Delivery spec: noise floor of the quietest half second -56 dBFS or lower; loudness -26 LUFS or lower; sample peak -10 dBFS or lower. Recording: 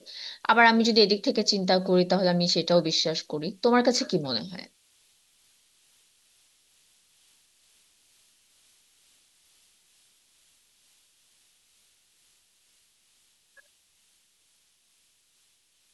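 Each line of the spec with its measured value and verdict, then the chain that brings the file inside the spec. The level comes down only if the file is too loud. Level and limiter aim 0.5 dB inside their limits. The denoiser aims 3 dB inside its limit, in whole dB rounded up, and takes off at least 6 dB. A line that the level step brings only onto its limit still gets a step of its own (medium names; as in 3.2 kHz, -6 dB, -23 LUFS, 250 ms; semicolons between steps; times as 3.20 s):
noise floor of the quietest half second -67 dBFS: pass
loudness -23.0 LUFS: fail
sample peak -5.5 dBFS: fail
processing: trim -3.5 dB; peak limiter -10.5 dBFS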